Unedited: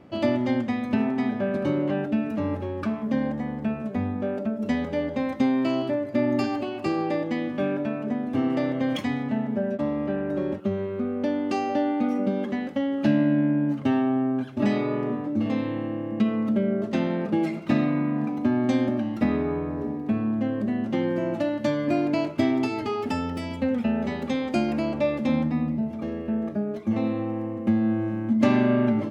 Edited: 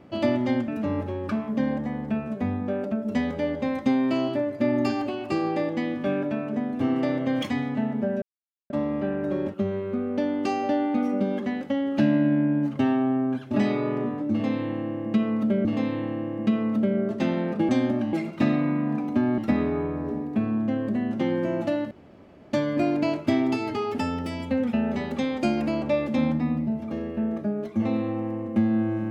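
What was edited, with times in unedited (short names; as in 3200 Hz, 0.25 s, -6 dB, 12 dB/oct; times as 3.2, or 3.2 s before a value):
0.68–2.22 cut
9.76 insert silence 0.48 s
15.38–16.71 loop, 2 plays
18.67–19.11 move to 17.42
21.64 insert room tone 0.62 s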